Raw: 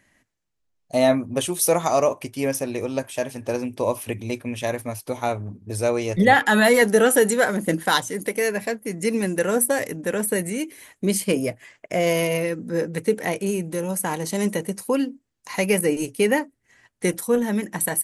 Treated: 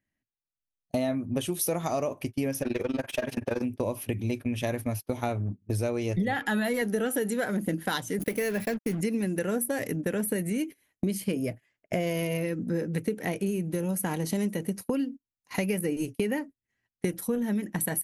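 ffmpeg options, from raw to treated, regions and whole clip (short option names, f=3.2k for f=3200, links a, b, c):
-filter_complex "[0:a]asettb=1/sr,asplit=3[a][b][c];[a]atrim=end=2.624[d];[b]atrim=start=2.62:end=3.62,asetpts=PTS-STARTPTS,afade=t=in:d=0.004:c=qsin,afade=t=out:st=0.996:d=0.004:c=qsin,asplit=2[e][f];[f]highpass=f=720:p=1,volume=21dB,asoftclip=type=tanh:threshold=-11dB[g];[e][g]amix=inputs=2:normalize=0,lowpass=f=2.3k:p=1,volume=-6dB,tremolo=f=21:d=0.919[h];[c]atrim=start=3.616[i];[d][h]acrossfade=d=0.004:c1=hsin:c2=qsin[j];[j][i]acrossfade=d=0.004:c1=qsin:c2=hsin,asettb=1/sr,asplit=3[k][l][m];[k]atrim=end=8.194[n];[l]atrim=start=8.19:end=9.01,asetpts=PTS-STARTPTS,afade=t=in:d=0.004:c=qsin,afade=t=out:st=0.816:d=0.004:c=qsin,aeval=exprs='val(0)+0.5*0.0178*sgn(val(0))':c=same,agate=range=-33dB:threshold=-31dB:ratio=3:release=100:detection=peak,acrusher=bits=5:mix=0:aa=0.5[o];[m]atrim=start=9.006[p];[n][o]acrossfade=d=0.004:c1=hsin:c2=qsin[q];[q][p]acrossfade=d=0.004:c1=qsin:c2=hsin,agate=range=-25dB:threshold=-33dB:ratio=16:detection=peak,equalizer=f=500:t=o:w=1:g=-5,equalizer=f=1k:t=o:w=1:g=-8,equalizer=f=2k:t=o:w=1:g=-4,equalizer=f=4k:t=o:w=1:g=-4,equalizer=f=8k:t=o:w=1:g=-11,acompressor=threshold=-33dB:ratio=6,volume=7dB"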